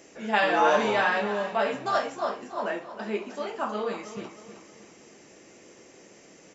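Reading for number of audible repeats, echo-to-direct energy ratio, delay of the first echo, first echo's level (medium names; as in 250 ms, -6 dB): 4, -11.0 dB, 315 ms, -12.0 dB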